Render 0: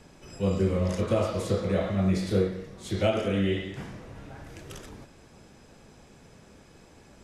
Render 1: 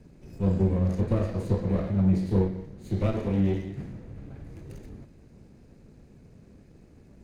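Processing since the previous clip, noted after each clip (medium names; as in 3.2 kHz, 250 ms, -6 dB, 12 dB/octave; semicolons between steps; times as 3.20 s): comb filter that takes the minimum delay 0.46 ms; tilt shelf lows +8 dB, about 650 Hz; trim -4 dB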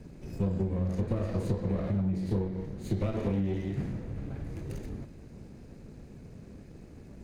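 compression 16:1, threshold -30 dBFS, peak gain reduction 13.5 dB; trim +4.5 dB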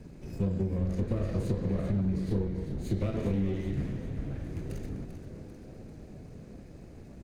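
frequency-shifting echo 393 ms, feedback 60%, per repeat -120 Hz, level -10 dB; dynamic bell 890 Hz, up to -5 dB, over -52 dBFS, Q 1.8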